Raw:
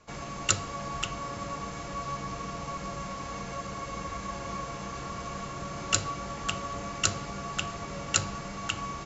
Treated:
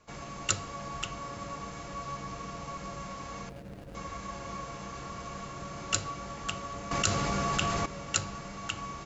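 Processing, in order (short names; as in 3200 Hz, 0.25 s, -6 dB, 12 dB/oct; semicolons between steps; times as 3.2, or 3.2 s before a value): 3.49–3.95 median filter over 41 samples; 6.91–7.86 fast leveller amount 70%; gain -3.5 dB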